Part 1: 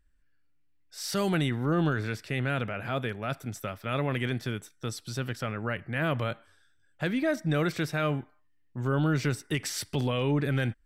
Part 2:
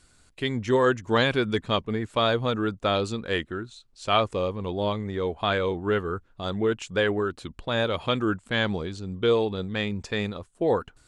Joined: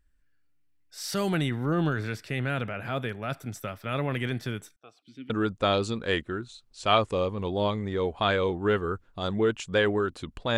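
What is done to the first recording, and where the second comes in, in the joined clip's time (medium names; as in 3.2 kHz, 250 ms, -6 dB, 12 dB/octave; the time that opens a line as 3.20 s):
part 1
4.76–5.30 s: stepped vowel filter 3.8 Hz
5.30 s: go over to part 2 from 2.52 s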